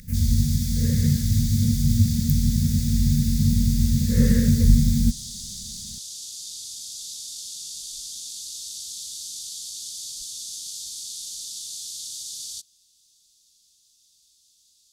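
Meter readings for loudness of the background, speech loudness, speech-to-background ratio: -33.5 LUFS, -21.0 LUFS, 12.5 dB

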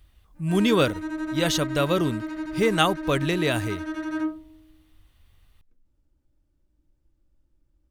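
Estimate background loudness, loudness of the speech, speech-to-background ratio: -31.5 LUFS, -24.5 LUFS, 7.0 dB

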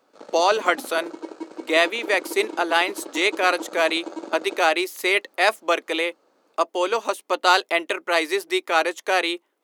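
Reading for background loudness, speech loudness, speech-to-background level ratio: -37.0 LUFS, -22.0 LUFS, 15.0 dB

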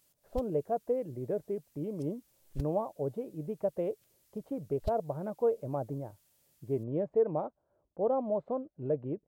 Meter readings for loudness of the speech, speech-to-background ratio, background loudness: -34.5 LUFS, 14.5 dB, -49.0 LUFS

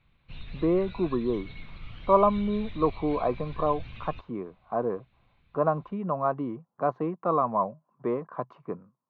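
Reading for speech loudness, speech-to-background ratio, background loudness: -28.5 LUFS, 16.5 dB, -45.0 LUFS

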